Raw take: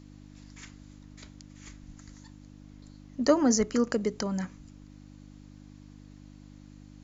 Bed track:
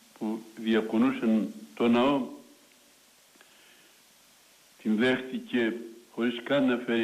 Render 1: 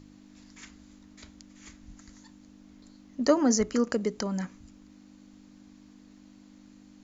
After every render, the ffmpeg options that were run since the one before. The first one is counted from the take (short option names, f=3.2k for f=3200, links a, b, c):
-af "bandreject=f=50:t=h:w=4,bandreject=f=100:t=h:w=4,bandreject=f=150:t=h:w=4"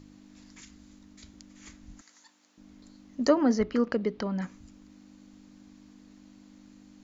-filter_complex "[0:a]asettb=1/sr,asplit=3[a][b][c];[a]atrim=end=0.604[d];[b]atrim=start=0.6:end=1.34,asetpts=PTS-STARTPTS,afade=t=in:d=0.004:c=qsin,afade=t=out:st=0.736:d=0.004:c=qsin,acrossover=split=310|3000[e][f][g];[f]acompressor=threshold=-59dB:ratio=6:attack=3.2:release=140:knee=2.83:detection=peak[h];[e][h][g]amix=inputs=3:normalize=0[i];[c]atrim=start=1.336[j];[d][i]acrossfade=d=0.004:c1=hsin:c2=qsin[k];[k][j]acrossfade=d=0.004:c1=qsin:c2=hsin,asettb=1/sr,asplit=3[l][m][n];[l]atrim=end=2.014[o];[m]atrim=start=2.01:end=2.58,asetpts=PTS-STARTPTS,afade=t=in:d=0.004:c=qsin,afade=t=out:st=0.566:d=0.004:c=qsin,highpass=690[p];[n]atrim=start=2.576[q];[o][p]acrossfade=d=0.004:c1=hsin:c2=qsin[r];[r][q]acrossfade=d=0.004:c1=qsin:c2=hsin,asettb=1/sr,asplit=3[s][t][u];[s]atrim=end=3.294[v];[t]atrim=start=3.29:end=4.42,asetpts=PTS-STARTPTS,afade=t=in:d=0.004:c=qsin,afade=t=out:st=1.126:d=0.004:c=qsin,lowpass=f=4.1k:w=0.5412,lowpass=f=4.1k:w=1.3066[w];[u]atrim=start=4.416[x];[v][w]acrossfade=d=0.004:c1=hsin:c2=qsin[y];[y][x]acrossfade=d=0.004:c1=qsin:c2=hsin"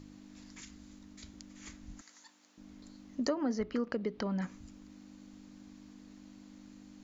-af "acompressor=threshold=-32dB:ratio=3"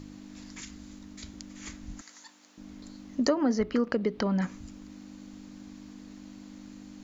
-af "volume=7dB"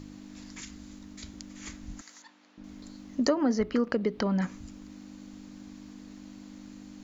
-filter_complex "[0:a]asettb=1/sr,asplit=3[a][b][c];[a]atrim=end=2.224[d];[b]atrim=start=2.22:end=2.64,asetpts=PTS-STARTPTS,afade=t=in:d=0.004:c=qsin,afade=t=out:st=0.416:d=0.004:c=qsin,lowpass=3.5k[e];[c]atrim=start=2.636[f];[d][e]acrossfade=d=0.004:c1=hsin:c2=qsin[g];[g][f]acrossfade=d=0.004:c1=qsin:c2=hsin"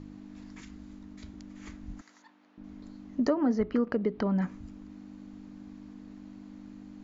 -af "lowpass=f=1.3k:p=1,bandreject=f=530:w=12"